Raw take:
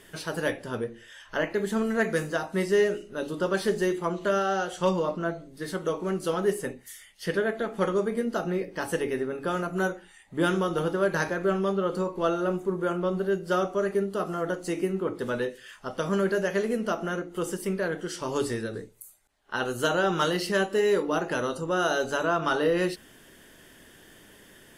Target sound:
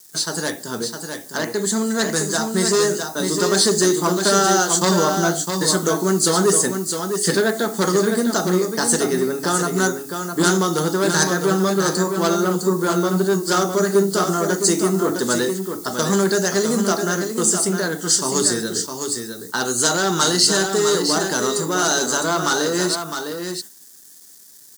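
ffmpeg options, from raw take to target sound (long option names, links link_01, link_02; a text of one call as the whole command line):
ffmpeg -i in.wav -af "agate=range=-16dB:threshold=-39dB:ratio=16:detection=peak,aeval=exprs='0.188*sin(PI/2*1.58*val(0)/0.188)':channel_layout=same,highpass=frequency=140:width=0.5412,highpass=frequency=140:width=1.3066,equalizer=frequency=540:width_type=q:width=4:gain=-8,equalizer=frequency=2400:width_type=q:width=4:gain=-9,equalizer=frequency=5600:width_type=q:width=4:gain=-10,lowpass=frequency=7100:width=0.5412,lowpass=frequency=7100:width=1.3066,aecho=1:1:658:0.473,acrusher=bits=9:mix=0:aa=0.000001,aexciter=amount=10:drive=6.8:freq=4400,dynaudnorm=framelen=200:gausssize=31:maxgain=11.5dB,volume=-1dB" out.wav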